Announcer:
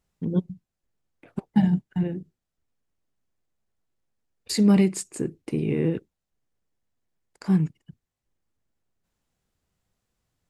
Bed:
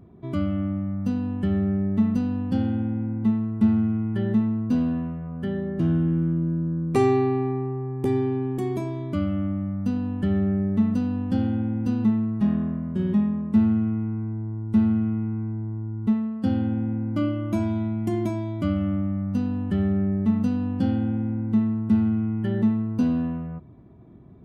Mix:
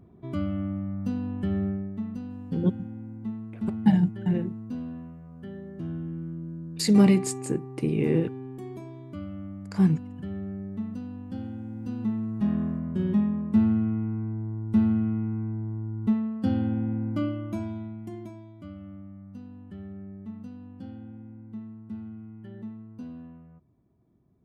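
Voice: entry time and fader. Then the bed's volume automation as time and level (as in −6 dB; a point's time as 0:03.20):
2.30 s, 0.0 dB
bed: 0:01.66 −4 dB
0:01.94 −12 dB
0:11.61 −12 dB
0:12.63 −2 dB
0:17.07 −2 dB
0:18.54 −18 dB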